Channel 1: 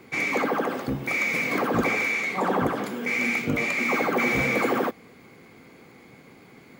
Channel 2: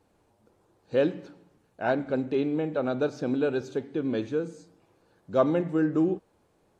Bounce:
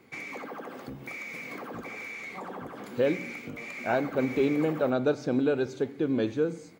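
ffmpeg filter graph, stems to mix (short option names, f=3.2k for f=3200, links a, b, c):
-filter_complex "[0:a]acompressor=threshold=-28dB:ratio=6,volume=-8.5dB[a];[1:a]alimiter=limit=-17dB:level=0:latency=1:release=433,adelay=2050,volume=1.5dB[b];[a][b]amix=inputs=2:normalize=0"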